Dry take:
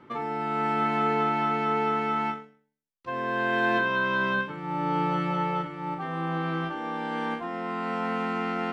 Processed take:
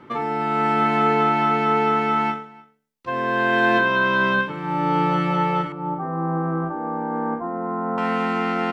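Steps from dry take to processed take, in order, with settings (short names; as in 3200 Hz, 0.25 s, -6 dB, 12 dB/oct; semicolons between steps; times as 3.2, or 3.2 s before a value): 5.72–7.98 LPF 1200 Hz 24 dB/oct; echo 0.301 s -23.5 dB; gain +6.5 dB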